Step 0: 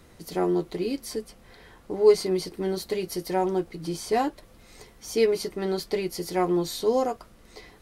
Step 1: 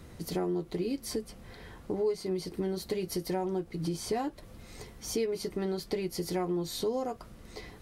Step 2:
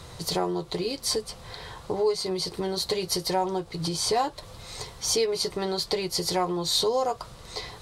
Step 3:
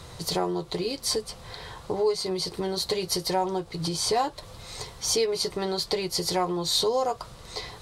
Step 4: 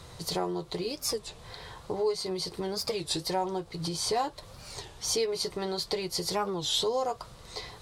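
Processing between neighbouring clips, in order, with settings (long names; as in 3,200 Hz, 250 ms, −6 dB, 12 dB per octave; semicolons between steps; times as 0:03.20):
parametric band 100 Hz +7 dB 2.9 octaves; downward compressor 4 to 1, threshold −30 dBFS, peak gain reduction 16.5 dB
octave-band graphic EQ 125/250/500/1,000/4,000/8,000 Hz +7/−9/+5/+10/+12/+8 dB; level +2 dB
no processing that can be heard
wow of a warped record 33 1/3 rpm, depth 250 cents; level −4 dB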